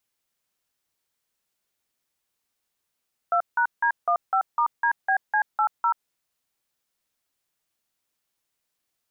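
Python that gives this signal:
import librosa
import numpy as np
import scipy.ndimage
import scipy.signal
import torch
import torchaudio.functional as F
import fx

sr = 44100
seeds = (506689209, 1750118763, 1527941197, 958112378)

y = fx.dtmf(sr, digits='2#D15*DBC80', tone_ms=84, gap_ms=168, level_db=-21.0)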